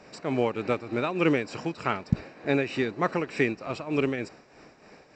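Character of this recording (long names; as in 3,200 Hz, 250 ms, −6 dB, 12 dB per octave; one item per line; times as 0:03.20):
tremolo triangle 3.3 Hz, depth 70%
A-law companding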